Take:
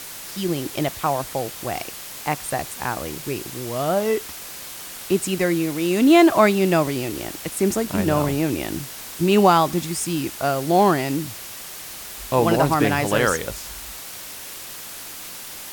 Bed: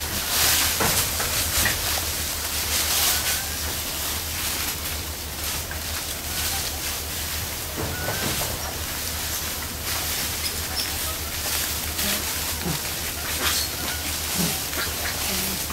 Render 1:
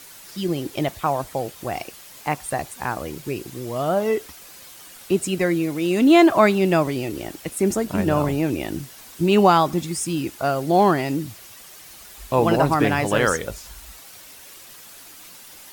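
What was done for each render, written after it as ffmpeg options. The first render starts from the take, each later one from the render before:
-af "afftdn=nr=9:nf=-36"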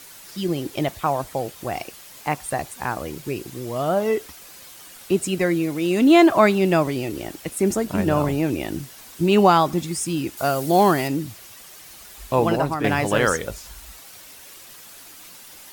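-filter_complex "[0:a]asettb=1/sr,asplit=3[a][b][c];[a]atrim=end=10.374[d];[b]atrim=start=10.37:end=11.08,asetpts=PTS-STARTPTS,afade=t=in:d=0.004:c=qsin,afade=t=out:st=0.706:d=0.004:c=qsin,highshelf=f=5.4k:g=10[e];[c]atrim=start=11.076[f];[d][e]acrossfade=d=0.004:c1=hsin:c2=qsin[g];[g][f]acrossfade=d=0.004:c1=qsin:c2=hsin,asplit=2[h][i];[h]atrim=end=12.84,asetpts=PTS-STARTPTS,afade=t=out:st=12.34:d=0.5:silence=0.375837[j];[i]atrim=start=12.84,asetpts=PTS-STARTPTS,afade=t=in:d=0.004:c=hsin:silence=0.375837[k];[j][k]concat=n=2:v=0:a=1"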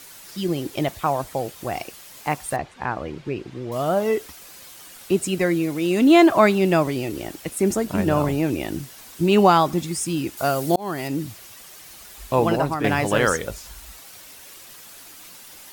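-filter_complex "[0:a]asettb=1/sr,asplit=3[a][b][c];[a]atrim=end=2.564[d];[b]atrim=start=2.56:end=3.72,asetpts=PTS-STARTPTS,afade=t=in:d=0.004:c=qsin,afade=t=out:st=1.156:d=0.004:c=qsin,lowpass=3.1k[e];[c]atrim=start=3.716[f];[d][e]acrossfade=d=0.004:c1=hsin:c2=qsin[g];[g][f]acrossfade=d=0.004:c1=qsin:c2=hsin,asplit=2[h][i];[h]atrim=end=10.76,asetpts=PTS-STARTPTS,afade=t=out:st=10.756:d=0.004:c=hsin[j];[i]atrim=start=10.76,asetpts=PTS-STARTPTS,afade=t=in:d=0.46[k];[j][k]concat=n=2:v=0:a=1"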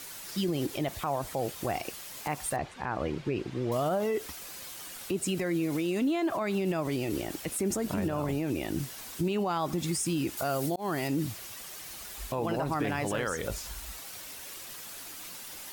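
-af "acompressor=threshold=-21dB:ratio=6,alimiter=limit=-21.5dB:level=0:latency=1:release=43"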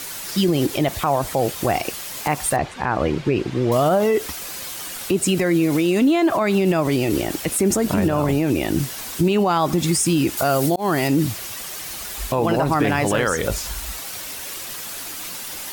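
-af "volume=11.5dB"

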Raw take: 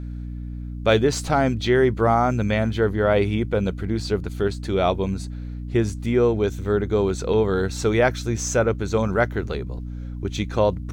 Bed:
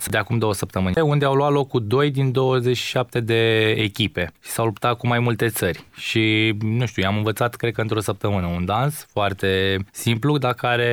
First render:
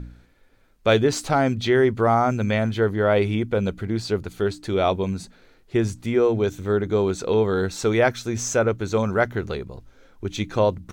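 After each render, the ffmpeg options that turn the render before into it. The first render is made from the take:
-af "bandreject=f=60:t=h:w=4,bandreject=f=120:t=h:w=4,bandreject=f=180:t=h:w=4,bandreject=f=240:t=h:w=4,bandreject=f=300:t=h:w=4"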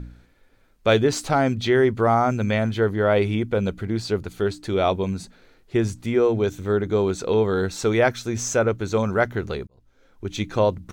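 -filter_complex "[0:a]asplit=2[a][b];[a]atrim=end=9.67,asetpts=PTS-STARTPTS,afade=t=out:st=9.666:d=0.004:c=hsin[c];[b]atrim=start=9.67,asetpts=PTS-STARTPTS,afade=t=in:d=0.7[d];[c][d]concat=n=2:v=0:a=1"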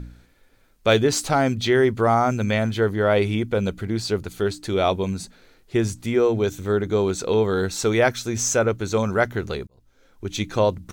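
-af "highshelf=f=4.3k:g=7"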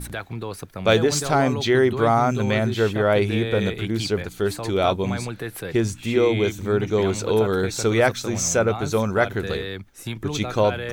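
-filter_complex "[1:a]volume=-11dB[a];[0:a][a]amix=inputs=2:normalize=0"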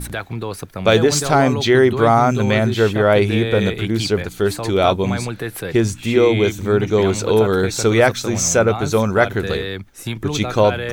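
-af "volume=5dB,alimiter=limit=-2dB:level=0:latency=1"

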